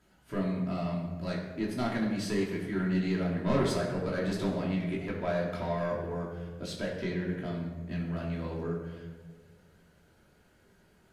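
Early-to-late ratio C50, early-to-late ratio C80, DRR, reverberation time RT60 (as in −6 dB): 3.5 dB, 5.0 dB, −5.0 dB, 1.4 s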